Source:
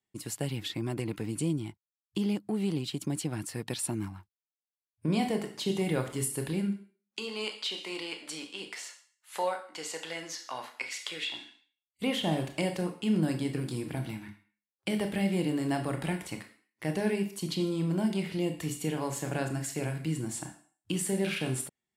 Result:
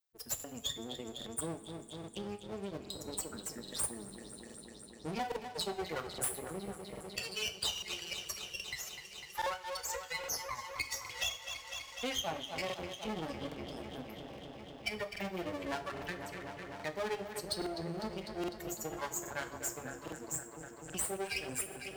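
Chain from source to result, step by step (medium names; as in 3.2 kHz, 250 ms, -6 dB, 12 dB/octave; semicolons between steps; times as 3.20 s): expander on every frequency bin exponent 3; saturation -30.5 dBFS, distortion -13 dB; feedback echo behind a low-pass 250 ms, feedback 73%, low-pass 3.8 kHz, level -12 dB; half-wave rectifier; resonant low shelf 140 Hz +8.5 dB, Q 1.5; spectral gate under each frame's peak -10 dB weak; compression 1.5:1, threshold -57 dBFS, peak gain reduction 7 dB; tone controls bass -12 dB, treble +4 dB; two-slope reverb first 0.38 s, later 2.3 s, from -17 dB, DRR 8 dB; crackling interface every 0.82 s, samples 2048, repeat, from 0.35 s; three bands compressed up and down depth 40%; trim +15 dB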